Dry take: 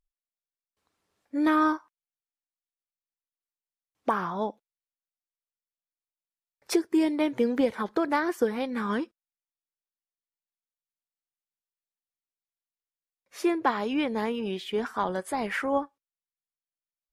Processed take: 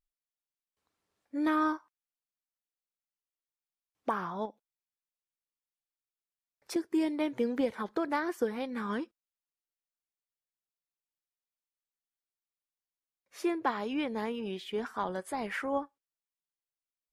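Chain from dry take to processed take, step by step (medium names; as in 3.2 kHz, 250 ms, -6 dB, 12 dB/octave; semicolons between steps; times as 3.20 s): 4.45–6.76 s: compression, threshold -34 dBFS, peak gain reduction 10 dB; trim -5.5 dB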